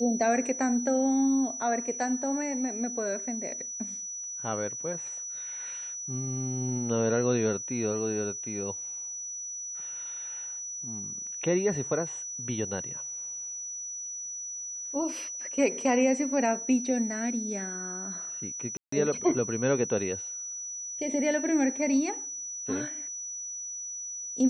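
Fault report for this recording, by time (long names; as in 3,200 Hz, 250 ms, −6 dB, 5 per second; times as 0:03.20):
whistle 5,900 Hz −35 dBFS
0:18.77–0:18.92: drop-out 154 ms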